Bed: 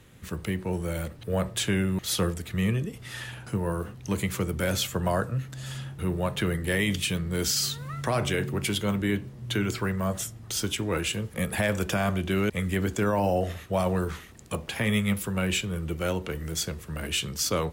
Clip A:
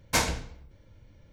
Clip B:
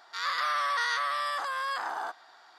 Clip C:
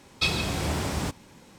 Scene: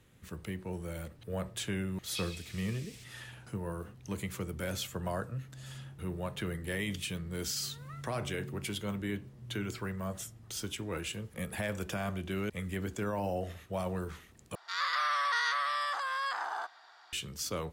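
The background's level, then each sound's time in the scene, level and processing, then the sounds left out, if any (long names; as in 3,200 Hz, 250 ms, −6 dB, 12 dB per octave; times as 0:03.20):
bed −9.5 dB
0:01.94: mix in C −15.5 dB + Butterworth high-pass 2,000 Hz
0:14.55: overwrite with B −2.5 dB + meter weighting curve A
not used: A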